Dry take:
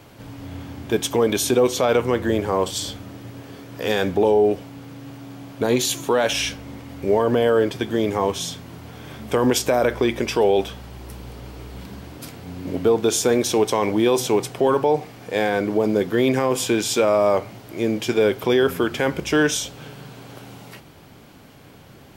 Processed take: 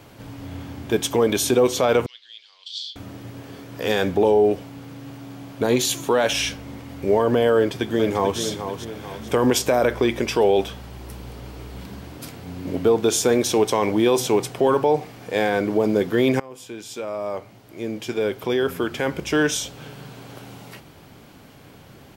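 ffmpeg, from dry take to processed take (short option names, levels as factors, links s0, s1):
-filter_complex "[0:a]asettb=1/sr,asplit=3[s0][s1][s2];[s0]atrim=end=2.064[s3];[s1]atrim=start=2.06:end=2.96,asetpts=PTS-STARTPTS,afade=t=in:d=0.004:c=qsin,afade=t=out:st=0.896:d=0.004:c=qsin,asuperpass=centerf=3900:order=4:qfactor=2.4[s4];[s2]atrim=start=2.956[s5];[s3][s4]acrossfade=d=0.004:c1=hsin:c2=qsin[s6];[s6][s5]acrossfade=d=0.004:c1=qsin:c2=hsin,asplit=2[s7][s8];[s8]afade=t=in:st=7.55:d=0.01,afade=t=out:st=8.4:d=0.01,aecho=0:1:440|880|1320|1760|2200:0.375837|0.169127|0.0761071|0.0342482|0.0154117[s9];[s7][s9]amix=inputs=2:normalize=0,asplit=2[s10][s11];[s10]atrim=end=16.4,asetpts=PTS-STARTPTS,afade=t=out:st=16.396:d=0.004:c=hsin:silence=0.0841395[s12];[s11]atrim=start=16.4,asetpts=PTS-STARTPTS,afade=t=in:d=3.66:silence=0.0841395[s13];[s12][s13]concat=n=2:v=0:a=1"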